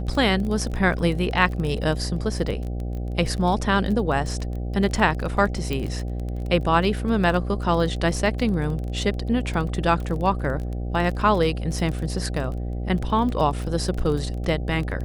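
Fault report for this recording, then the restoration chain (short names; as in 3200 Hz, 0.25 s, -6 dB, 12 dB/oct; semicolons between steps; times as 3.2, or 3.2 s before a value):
buzz 60 Hz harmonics 13 -28 dBFS
crackle 22/s -28 dBFS
5.73 pop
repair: de-click; de-hum 60 Hz, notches 13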